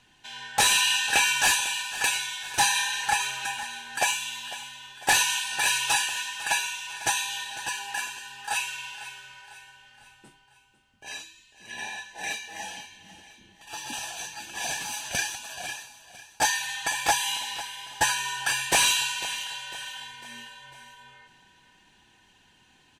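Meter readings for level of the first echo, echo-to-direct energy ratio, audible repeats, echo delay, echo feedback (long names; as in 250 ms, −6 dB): −15.5 dB, −14.5 dB, 4, 500 ms, 48%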